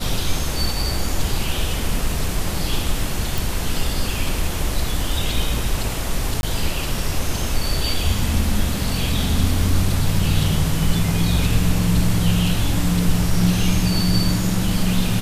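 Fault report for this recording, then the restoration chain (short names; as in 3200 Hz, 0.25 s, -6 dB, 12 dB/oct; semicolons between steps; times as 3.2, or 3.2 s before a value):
3.38 pop
6.41–6.43 gap 21 ms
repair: de-click; interpolate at 6.41, 21 ms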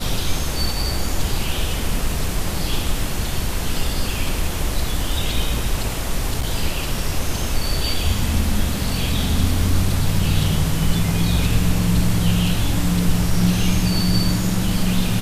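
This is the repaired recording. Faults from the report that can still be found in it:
none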